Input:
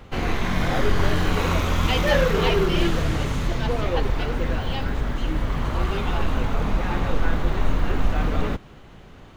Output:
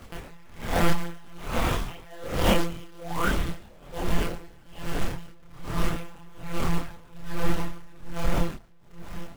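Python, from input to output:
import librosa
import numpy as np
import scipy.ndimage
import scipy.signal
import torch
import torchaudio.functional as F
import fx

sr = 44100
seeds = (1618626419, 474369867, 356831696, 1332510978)

y = fx.peak_eq(x, sr, hz=85.0, db=-9.0, octaves=0.36, at=(5.03, 7.33))
y = fx.echo_heads(y, sr, ms=228, heads='first and second', feedback_pct=69, wet_db=-17.0)
y = fx.spec_paint(y, sr, seeds[0], shape='rise', start_s=2.88, length_s=0.4, low_hz=330.0, high_hz=1600.0, level_db=-24.0)
y = fx.dynamic_eq(y, sr, hz=770.0, q=1.3, threshold_db=-29.0, ratio=4.0, max_db=5)
y = fx.lpc_monotone(y, sr, seeds[1], pitch_hz=170.0, order=10)
y = fx.quant_companded(y, sr, bits=4)
y = fx.chorus_voices(y, sr, voices=6, hz=0.67, base_ms=27, depth_ms=4.6, mix_pct=50)
y = y * 10.0 ** (-27 * (0.5 - 0.5 * np.cos(2.0 * np.pi * 1.2 * np.arange(len(y)) / sr)) / 20.0)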